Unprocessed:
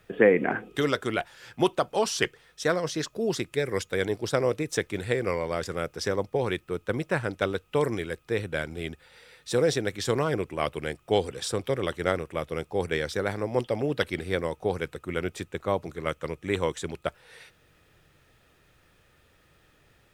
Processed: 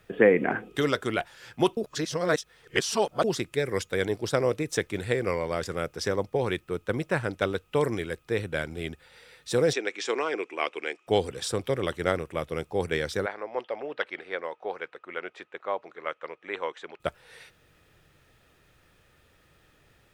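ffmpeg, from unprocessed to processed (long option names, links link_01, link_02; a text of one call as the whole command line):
ffmpeg -i in.wav -filter_complex "[0:a]asettb=1/sr,asplit=3[link_01][link_02][link_03];[link_01]atrim=end=9.734[link_04];[link_02]atrim=start=9.73:end=11.07,asetpts=PTS-STARTPTS,afade=type=in:duration=0.004:curve=qsin,afade=type=out:start_time=1.336:duration=0.004:curve=qsin,highpass=frequency=330:width=0.5412,highpass=frequency=330:width=1.3066,equalizer=frequency=580:width_type=q:width=4:gain=-6,equalizer=frequency=2400:width_type=q:width=4:gain=8,equalizer=frequency=4300:width_type=q:width=4:gain=-5,lowpass=frequency=7100:width=0.5412,lowpass=frequency=7100:width=1.3066[link_05];[link_03]atrim=start=11.066[link_06];[link_04][link_05]acrossfade=duration=0.004:curve1=hsin:curve2=qsin[link_07];[link_07][link_06]acrossfade=duration=0.004:curve1=qsin:curve2=hsin,asplit=3[link_08][link_09][link_10];[link_08]afade=type=out:start_time=13.25:duration=0.02[link_11];[link_09]highpass=620,lowpass=2500,afade=type=in:start_time=13.25:duration=0.02,afade=type=out:start_time=16.99:duration=0.02[link_12];[link_10]afade=type=in:start_time=16.99:duration=0.02[link_13];[link_11][link_12][link_13]amix=inputs=3:normalize=0,asplit=3[link_14][link_15][link_16];[link_14]atrim=end=1.772[link_17];[link_15]atrim=start=1.768:end=3.242,asetpts=PTS-STARTPTS,areverse[link_18];[link_16]atrim=start=3.238[link_19];[link_17][link_18]acrossfade=duration=0.004:curve1=hsin:curve2=hsin[link_20];[link_20][link_19]acrossfade=duration=0.004:curve1=hsin:curve2=hsin" out.wav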